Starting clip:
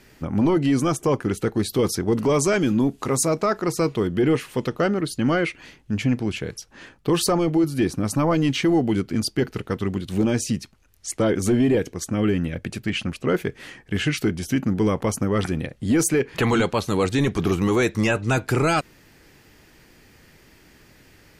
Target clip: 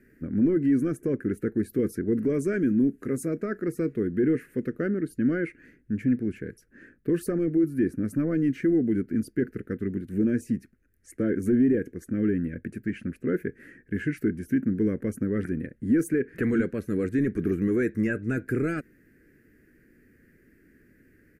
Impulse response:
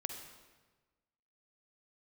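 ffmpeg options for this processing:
-af "firequalizer=gain_entry='entry(140,0);entry(240,8);entry(460,2);entry(880,-25);entry(1600,5);entry(3300,-22);entry(11000,-4)':delay=0.05:min_phase=1,volume=-8.5dB"

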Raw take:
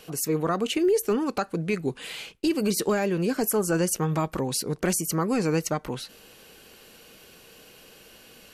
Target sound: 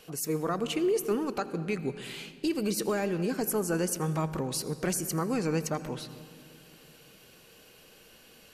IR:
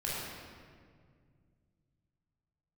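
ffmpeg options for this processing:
-filter_complex "[0:a]asplit=2[a][b];[1:a]atrim=start_sample=2205,adelay=82[c];[b][c]afir=irnorm=-1:irlink=0,volume=-18.5dB[d];[a][d]amix=inputs=2:normalize=0,volume=-5dB"

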